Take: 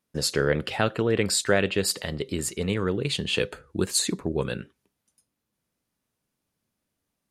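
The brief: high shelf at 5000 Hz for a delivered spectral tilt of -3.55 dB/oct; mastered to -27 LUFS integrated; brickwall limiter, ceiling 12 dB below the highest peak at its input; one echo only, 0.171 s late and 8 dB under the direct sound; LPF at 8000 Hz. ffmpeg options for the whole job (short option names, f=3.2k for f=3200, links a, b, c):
-af "lowpass=8k,highshelf=f=5k:g=4,alimiter=limit=-18.5dB:level=0:latency=1,aecho=1:1:171:0.398,volume=2.5dB"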